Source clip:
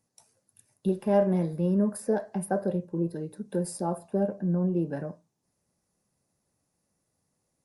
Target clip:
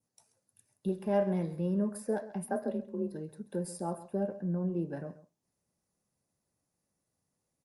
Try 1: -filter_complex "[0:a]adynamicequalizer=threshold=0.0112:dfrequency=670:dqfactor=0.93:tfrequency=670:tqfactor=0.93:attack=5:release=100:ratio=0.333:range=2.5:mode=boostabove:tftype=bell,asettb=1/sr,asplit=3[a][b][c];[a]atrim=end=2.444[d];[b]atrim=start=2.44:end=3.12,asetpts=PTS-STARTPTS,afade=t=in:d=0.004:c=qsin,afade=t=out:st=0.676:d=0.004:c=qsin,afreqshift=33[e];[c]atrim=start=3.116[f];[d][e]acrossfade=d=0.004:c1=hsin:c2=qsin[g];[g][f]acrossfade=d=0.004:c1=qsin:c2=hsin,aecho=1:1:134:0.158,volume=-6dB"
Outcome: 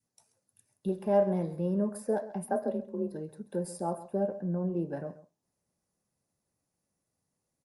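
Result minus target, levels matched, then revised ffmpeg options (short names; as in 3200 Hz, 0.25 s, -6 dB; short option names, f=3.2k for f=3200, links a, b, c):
2000 Hz band -3.0 dB
-filter_complex "[0:a]adynamicequalizer=threshold=0.0112:dfrequency=2400:dqfactor=0.93:tfrequency=2400:tqfactor=0.93:attack=5:release=100:ratio=0.333:range=2.5:mode=boostabove:tftype=bell,asettb=1/sr,asplit=3[a][b][c];[a]atrim=end=2.444[d];[b]atrim=start=2.44:end=3.12,asetpts=PTS-STARTPTS,afade=t=in:d=0.004:c=qsin,afade=t=out:st=0.676:d=0.004:c=qsin,afreqshift=33[e];[c]atrim=start=3.116[f];[d][e]acrossfade=d=0.004:c1=hsin:c2=qsin[g];[g][f]acrossfade=d=0.004:c1=qsin:c2=hsin,aecho=1:1:134:0.158,volume=-6dB"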